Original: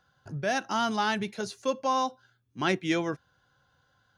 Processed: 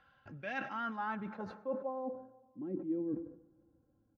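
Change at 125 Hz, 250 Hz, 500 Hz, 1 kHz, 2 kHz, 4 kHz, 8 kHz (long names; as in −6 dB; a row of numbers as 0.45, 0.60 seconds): −12.5 dB, −7.0 dB, −9.0 dB, −12.0 dB, −11.0 dB, below −20 dB, below −30 dB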